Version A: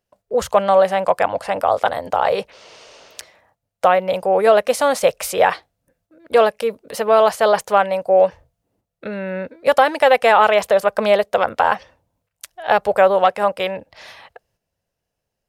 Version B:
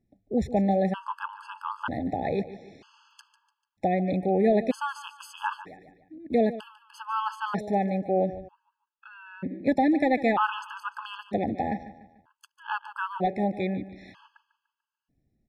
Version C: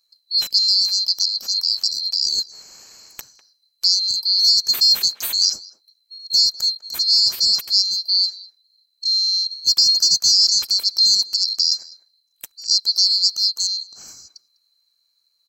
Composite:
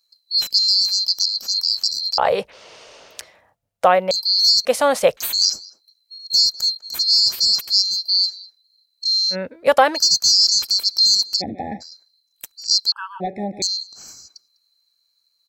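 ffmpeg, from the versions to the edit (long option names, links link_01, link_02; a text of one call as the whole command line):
ffmpeg -i take0.wav -i take1.wav -i take2.wav -filter_complex "[0:a]asplit=3[link_01][link_02][link_03];[1:a]asplit=2[link_04][link_05];[2:a]asplit=6[link_06][link_07][link_08][link_09][link_10][link_11];[link_06]atrim=end=2.182[link_12];[link_01]atrim=start=2.178:end=4.112[link_13];[link_07]atrim=start=4.108:end=4.652[link_14];[link_02]atrim=start=4.648:end=5.172[link_15];[link_08]atrim=start=5.168:end=9.36[link_16];[link_03]atrim=start=9.3:end=10[link_17];[link_09]atrim=start=9.94:end=11.42[link_18];[link_04]atrim=start=11.4:end=11.82[link_19];[link_10]atrim=start=11.8:end=12.922[link_20];[link_05]atrim=start=12.918:end=13.622[link_21];[link_11]atrim=start=13.618[link_22];[link_12][link_13]acrossfade=duration=0.004:curve1=hsin:curve2=hsin[link_23];[link_23][link_14]acrossfade=duration=0.004:curve1=hsin:curve2=hsin[link_24];[link_24][link_15]acrossfade=duration=0.004:curve1=hsin:curve2=hsin[link_25];[link_25][link_16]acrossfade=duration=0.004:curve1=hsin:curve2=hsin[link_26];[link_26][link_17]acrossfade=duration=0.06:curve1=tri:curve2=tri[link_27];[link_27][link_18]acrossfade=duration=0.06:curve1=tri:curve2=tri[link_28];[link_28][link_19]acrossfade=duration=0.02:curve1=tri:curve2=tri[link_29];[link_29][link_20]acrossfade=duration=0.02:curve1=tri:curve2=tri[link_30];[link_30][link_21]acrossfade=duration=0.004:curve1=hsin:curve2=hsin[link_31];[link_31][link_22]acrossfade=duration=0.004:curve1=hsin:curve2=hsin" out.wav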